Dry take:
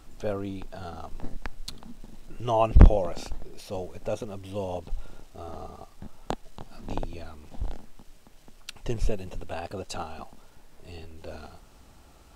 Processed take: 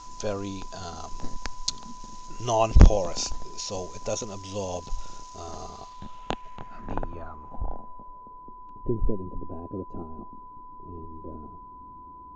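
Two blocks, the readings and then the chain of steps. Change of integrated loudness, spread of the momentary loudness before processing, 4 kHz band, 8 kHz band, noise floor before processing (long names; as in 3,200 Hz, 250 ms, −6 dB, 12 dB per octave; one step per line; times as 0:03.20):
0.0 dB, 20 LU, +7.0 dB, can't be measured, −54 dBFS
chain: low-pass filter sweep 5,300 Hz → 320 Hz, 0:05.61–0:08.71
steady tone 1,000 Hz −43 dBFS
low-pass with resonance 6,700 Hz, resonance Q 8.2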